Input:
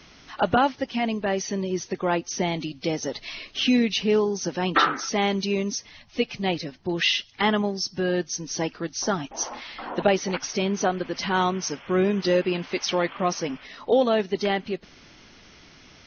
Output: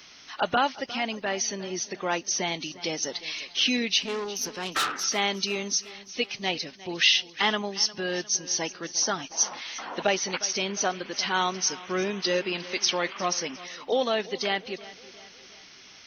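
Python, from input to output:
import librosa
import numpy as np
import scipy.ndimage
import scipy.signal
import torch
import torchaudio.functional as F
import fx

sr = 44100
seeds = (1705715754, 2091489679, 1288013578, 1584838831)

y = fx.tube_stage(x, sr, drive_db=21.0, bias=0.55, at=(4.02, 5.04))
y = fx.tilt_eq(y, sr, slope=3.0)
y = fx.echo_feedback(y, sr, ms=355, feedback_pct=48, wet_db=-18)
y = y * librosa.db_to_amplitude(-2.5)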